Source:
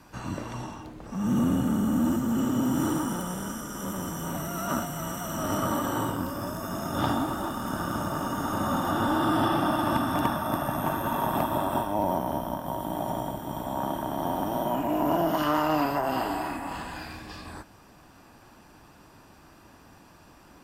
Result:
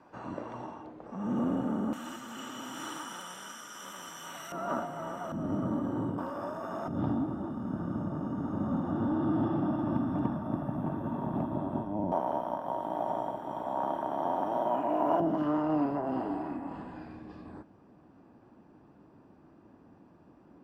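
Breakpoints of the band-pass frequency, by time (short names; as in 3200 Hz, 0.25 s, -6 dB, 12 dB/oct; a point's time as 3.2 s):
band-pass, Q 0.85
580 Hz
from 1.93 s 2800 Hz
from 4.52 s 650 Hz
from 5.32 s 210 Hz
from 6.18 s 670 Hz
from 6.88 s 190 Hz
from 12.12 s 710 Hz
from 15.2 s 270 Hz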